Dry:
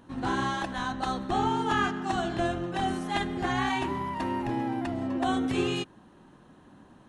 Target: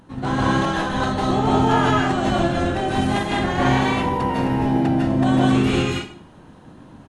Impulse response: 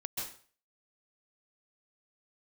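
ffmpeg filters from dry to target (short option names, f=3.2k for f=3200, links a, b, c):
-filter_complex "[1:a]atrim=start_sample=2205,asetrate=38808,aresample=44100[a];[0:a][a]afir=irnorm=-1:irlink=0,asplit=3[b][c][d];[c]asetrate=22050,aresample=44100,atempo=2,volume=-5dB[e];[d]asetrate=35002,aresample=44100,atempo=1.25992,volume=-8dB[f];[b][e][f]amix=inputs=3:normalize=0,acontrast=35"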